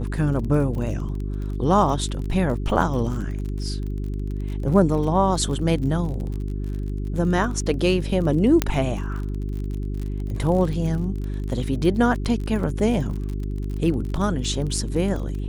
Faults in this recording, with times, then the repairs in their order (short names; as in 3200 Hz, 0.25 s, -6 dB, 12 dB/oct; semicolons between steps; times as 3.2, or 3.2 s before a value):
crackle 35/s -30 dBFS
hum 50 Hz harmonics 8 -27 dBFS
8.62 pop -4 dBFS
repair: de-click; de-hum 50 Hz, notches 8